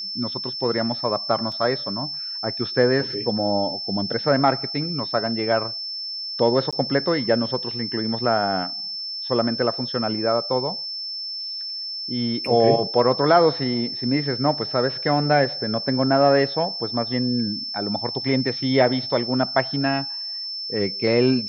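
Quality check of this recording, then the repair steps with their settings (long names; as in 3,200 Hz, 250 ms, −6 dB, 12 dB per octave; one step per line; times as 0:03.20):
whistle 5,300 Hz −28 dBFS
0:01.52: drop-out 3.5 ms
0:06.71–0:06.73: drop-out 16 ms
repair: notch filter 5,300 Hz, Q 30
repair the gap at 0:01.52, 3.5 ms
repair the gap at 0:06.71, 16 ms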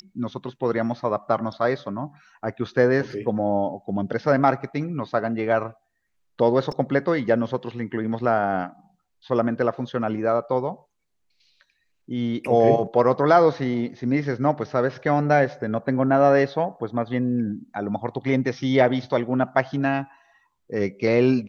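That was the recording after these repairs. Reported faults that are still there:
none of them is left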